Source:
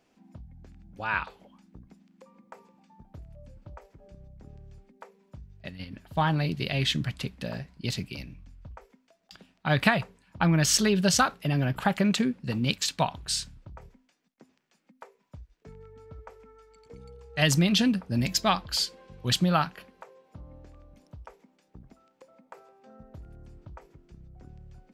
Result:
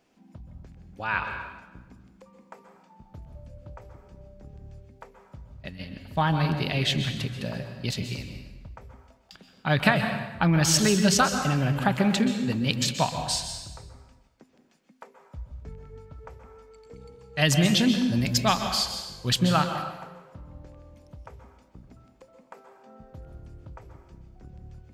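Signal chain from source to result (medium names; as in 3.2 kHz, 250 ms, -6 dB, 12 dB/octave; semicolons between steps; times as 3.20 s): 15.36–15.80 s: bass shelf 120 Hz +9.5 dB; plate-style reverb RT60 1.1 s, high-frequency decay 0.8×, pre-delay 115 ms, DRR 6 dB; trim +1 dB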